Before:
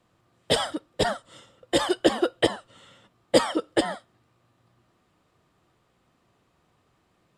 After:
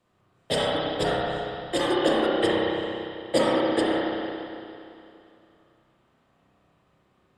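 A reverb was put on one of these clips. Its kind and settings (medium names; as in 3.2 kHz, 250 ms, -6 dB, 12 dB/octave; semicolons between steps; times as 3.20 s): spring tank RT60 2.7 s, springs 31/57 ms, chirp 45 ms, DRR -5.5 dB; trim -5 dB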